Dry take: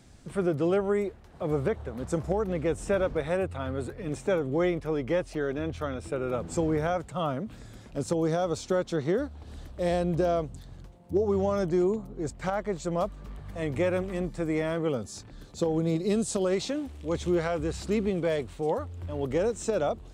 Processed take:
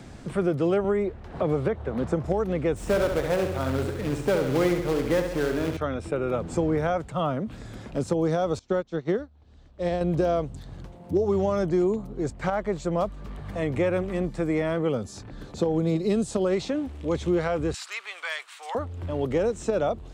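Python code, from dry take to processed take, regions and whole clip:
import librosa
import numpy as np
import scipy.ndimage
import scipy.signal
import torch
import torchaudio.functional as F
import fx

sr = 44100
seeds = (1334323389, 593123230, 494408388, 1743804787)

y = fx.chain(x, sr, fx.high_shelf(hz=4900.0, db=-11.5),
    fx.band_squash(depth_pct=70), at=(0.84, 2.26))
y = fx.chain(y, sr, fx.quant_companded(bits=4),
    fx.echo_feedback(ms=68, feedback_pct=53, wet_db=-7.0), at=(2.76, 5.77))
y = fx.chain(y, sr, fx.lowpass(hz=7500.0, slope=24),
    fx.upward_expand(threshold_db=-36.0, expansion=2.5), at=(8.59, 10.01))
y = fx.chain(y, sr, fx.highpass(hz=1100.0, slope=24),
    fx.high_shelf(hz=2200.0, db=9.5), at=(17.74, 18.75))
y = fx.high_shelf(y, sr, hz=5200.0, db=-8.0)
y = fx.band_squash(y, sr, depth_pct=40)
y = y * 10.0 ** (2.5 / 20.0)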